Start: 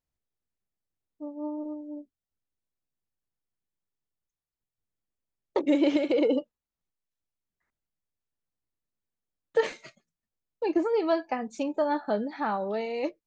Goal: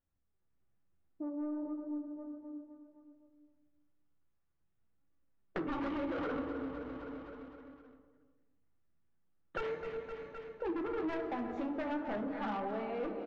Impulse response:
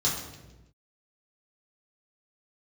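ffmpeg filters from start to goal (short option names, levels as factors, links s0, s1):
-filter_complex "[0:a]bandreject=f=50.95:t=h:w=4,bandreject=f=101.9:t=h:w=4,bandreject=f=152.85:t=h:w=4,bandreject=f=203.8:t=h:w=4,bandreject=f=254.75:t=h:w=4,bandreject=f=305.7:t=h:w=4,bandreject=f=356.65:t=h:w=4,bandreject=f=407.6:t=h:w=4,bandreject=f=458.55:t=h:w=4,aeval=exprs='0.0708*(abs(mod(val(0)/0.0708+3,4)-2)-1)':c=same,lowpass=1600,aecho=1:1:364:0.112,asplit=2[s0][s1];[1:a]atrim=start_sample=2205[s2];[s1][s2]afir=irnorm=-1:irlink=0,volume=0.2[s3];[s0][s3]amix=inputs=2:normalize=0,dynaudnorm=f=110:g=7:m=2,asoftclip=type=tanh:threshold=0.075,aecho=1:1:258|516|774|1032|1290|1548:0.251|0.141|0.0788|0.0441|0.0247|0.0138,flanger=delay=3.5:depth=8.7:regen=67:speed=0.39:shape=sinusoidal,acompressor=threshold=0.00447:ratio=2.5,volume=2"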